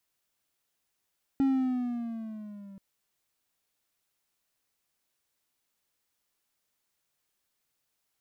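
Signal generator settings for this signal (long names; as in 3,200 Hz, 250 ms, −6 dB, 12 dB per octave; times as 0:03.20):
pitch glide with a swell triangle, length 1.38 s, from 274 Hz, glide −6 semitones, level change −23.5 dB, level −19 dB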